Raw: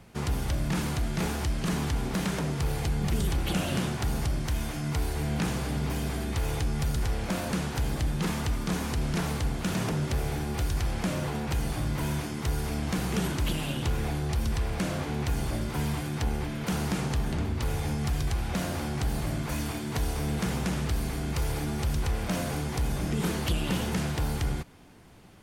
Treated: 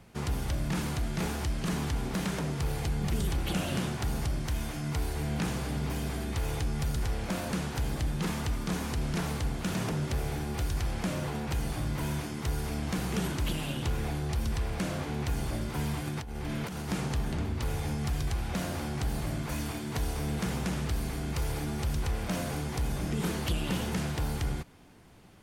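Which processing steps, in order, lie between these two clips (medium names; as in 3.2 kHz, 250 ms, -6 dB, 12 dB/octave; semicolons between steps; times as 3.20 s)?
16.07–16.90 s: compressor with a negative ratio -33 dBFS, ratio -1; trim -2.5 dB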